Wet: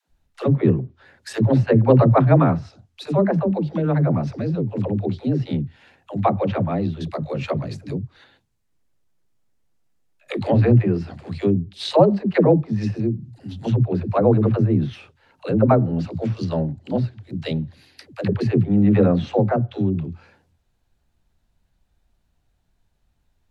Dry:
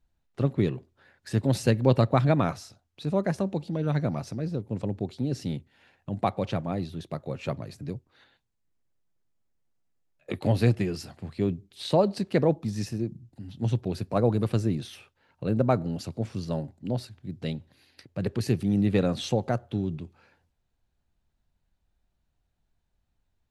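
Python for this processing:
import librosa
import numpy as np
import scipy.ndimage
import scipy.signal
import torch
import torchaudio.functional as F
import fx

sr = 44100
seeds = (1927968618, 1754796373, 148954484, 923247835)

y = fx.dispersion(x, sr, late='lows', ms=92.0, hz=310.0)
y = fx.env_lowpass_down(y, sr, base_hz=1600.0, full_db=-24.0)
y = y * librosa.db_to_amplitude(8.0)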